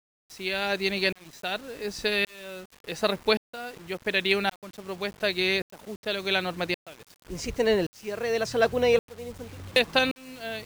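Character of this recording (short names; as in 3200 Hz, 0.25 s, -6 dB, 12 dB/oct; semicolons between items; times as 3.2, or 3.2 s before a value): tremolo saw up 0.89 Hz, depth 100%; a quantiser's noise floor 8-bit, dither none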